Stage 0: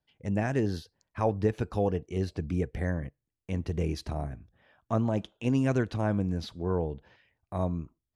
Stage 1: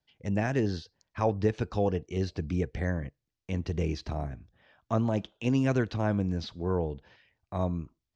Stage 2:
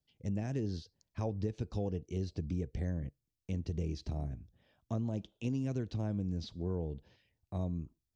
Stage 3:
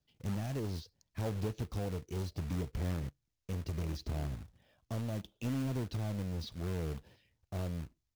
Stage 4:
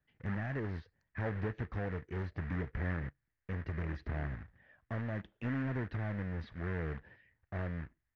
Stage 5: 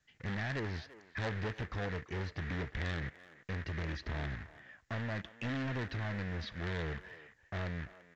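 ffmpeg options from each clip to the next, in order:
-filter_complex "[0:a]lowpass=f=6k:w=0.5412,lowpass=f=6k:w=1.3066,highshelf=f=4.2k:g=9.5,acrossover=split=550|3400[a][b][c];[c]alimiter=level_in=13dB:limit=-24dB:level=0:latency=1:release=156,volume=-13dB[d];[a][b][d]amix=inputs=3:normalize=0"
-af "equalizer=f=1.4k:t=o:w=2.5:g=-14.5,acompressor=threshold=-33dB:ratio=3"
-af "aphaser=in_gain=1:out_gain=1:delay=2:decay=0.27:speed=0.71:type=sinusoidal,aresample=16000,asoftclip=type=tanh:threshold=-31.5dB,aresample=44100,acrusher=bits=3:mode=log:mix=0:aa=0.000001,volume=1dB"
-af "lowpass=f=1.8k:t=q:w=5.3,volume=-1dB"
-filter_complex "[0:a]aresample=16000,asoftclip=type=tanh:threshold=-34.5dB,aresample=44100,crystalizer=i=7:c=0,asplit=2[a][b];[b]adelay=340,highpass=300,lowpass=3.4k,asoftclip=type=hard:threshold=-34.5dB,volume=-15dB[c];[a][c]amix=inputs=2:normalize=0,volume=1.5dB"

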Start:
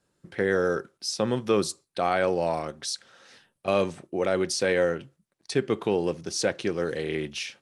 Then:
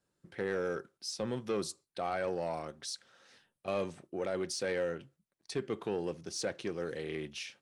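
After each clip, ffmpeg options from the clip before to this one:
-af "asoftclip=type=tanh:threshold=-16.5dB,volume=-8.5dB"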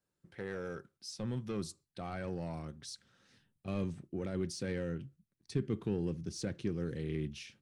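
-af "asubboost=boost=10:cutoff=210,volume=-6dB"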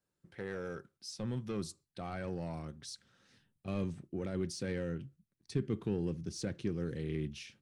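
-af anull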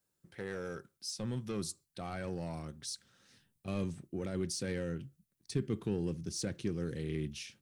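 -af "highshelf=f=6k:g=11"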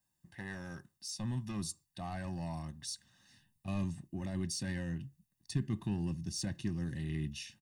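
-af "aecho=1:1:1.1:0.98,volume=-3dB"

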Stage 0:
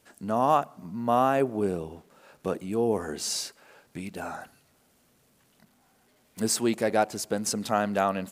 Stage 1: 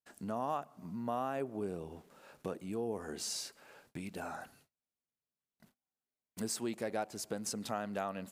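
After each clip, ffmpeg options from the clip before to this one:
-af "agate=range=-33dB:threshold=-60dB:ratio=16:detection=peak,acompressor=threshold=-37dB:ratio=2,volume=-3.5dB"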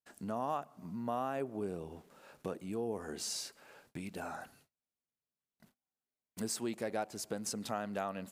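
-af anull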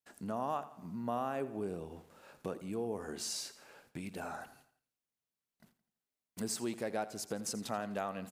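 -af "aecho=1:1:84|168|252|336:0.158|0.0729|0.0335|0.0154"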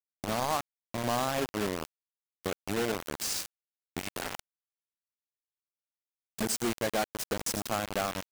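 -af "acrusher=bits=5:mix=0:aa=0.000001,volume=5.5dB"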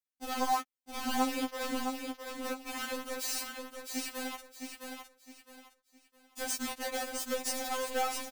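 -filter_complex "[0:a]asplit=2[a][b];[b]aecho=0:1:662|1324|1986|2648:0.531|0.165|0.051|0.0158[c];[a][c]amix=inputs=2:normalize=0,afftfilt=real='re*3.46*eq(mod(b,12),0)':imag='im*3.46*eq(mod(b,12),0)':win_size=2048:overlap=0.75"

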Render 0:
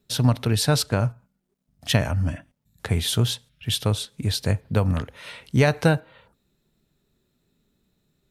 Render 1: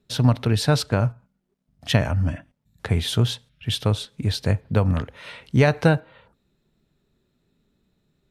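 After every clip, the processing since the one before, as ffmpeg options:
-af "highshelf=f=6.5k:g=-11.5,volume=1.5dB"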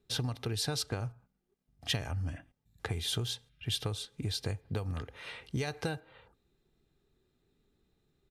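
-filter_complex "[0:a]aecho=1:1:2.5:0.42,acrossover=split=3800[a][b];[a]acompressor=threshold=-26dB:ratio=10[c];[c][b]amix=inputs=2:normalize=0,volume=-5.5dB"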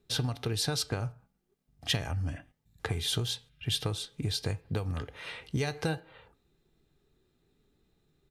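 -af "flanger=delay=5.8:depth=1.4:regen=87:speed=1.5:shape=triangular,volume=7.5dB"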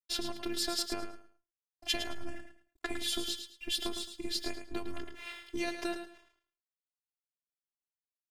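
-af "aeval=exprs='sgn(val(0))*max(abs(val(0))-0.00158,0)':c=same,afftfilt=real='hypot(re,im)*cos(PI*b)':imag='0':win_size=512:overlap=0.75,aecho=1:1:108|216|324:0.376|0.0902|0.0216,volume=2dB"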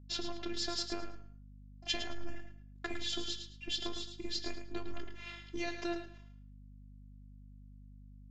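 -af "flanger=delay=9.9:depth=6.3:regen=75:speed=0.4:shape=triangular,aeval=exprs='val(0)+0.002*(sin(2*PI*50*n/s)+sin(2*PI*2*50*n/s)/2+sin(2*PI*3*50*n/s)/3+sin(2*PI*4*50*n/s)/4+sin(2*PI*5*50*n/s)/5)':c=same,aresample=16000,aresample=44100,volume=1.5dB"

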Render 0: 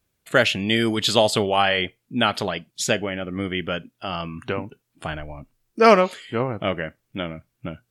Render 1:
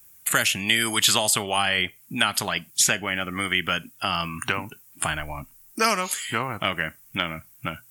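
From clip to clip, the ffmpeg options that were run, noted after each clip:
-filter_complex "[0:a]equalizer=f=500:t=o:w=1:g=-8,equalizer=f=1k:t=o:w=1:g=3,equalizer=f=4k:t=o:w=1:g=-11,acrossover=split=500|3500[a][b][c];[a]acompressor=threshold=-38dB:ratio=4[d];[b]acompressor=threshold=-35dB:ratio=4[e];[c]acompressor=threshold=-46dB:ratio=4[f];[d][e][f]amix=inputs=3:normalize=0,crystalizer=i=8:c=0,volume=5dB"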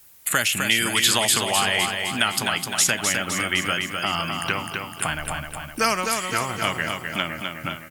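-filter_complex "[0:a]acrusher=bits=8:mix=0:aa=0.000001,asplit=2[a][b];[b]aecho=0:1:256|512|768|1024|1280|1536|1792:0.562|0.309|0.17|0.0936|0.0515|0.0283|0.0156[c];[a][c]amix=inputs=2:normalize=0"

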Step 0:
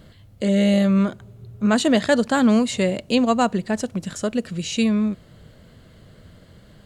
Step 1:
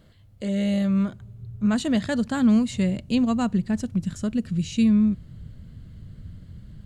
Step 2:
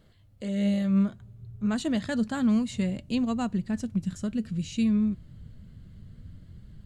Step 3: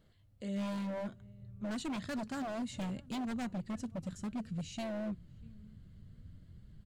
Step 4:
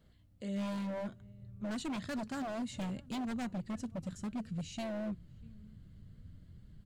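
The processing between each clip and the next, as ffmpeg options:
-af "asubboost=boost=8.5:cutoff=190,volume=-8dB"
-af "flanger=delay=2.2:depth=3.5:regen=76:speed=0.6:shape=triangular"
-filter_complex "[0:a]asplit=2[a][b];[b]adelay=641.4,volume=-27dB,highshelf=f=4k:g=-14.4[c];[a][c]amix=inputs=2:normalize=0,aeval=exprs='0.0562*(abs(mod(val(0)/0.0562+3,4)-2)-1)':c=same,volume=-7.5dB"
-af "aeval=exprs='val(0)+0.000398*(sin(2*PI*60*n/s)+sin(2*PI*2*60*n/s)/2+sin(2*PI*3*60*n/s)/3+sin(2*PI*4*60*n/s)/4+sin(2*PI*5*60*n/s)/5)':c=same"

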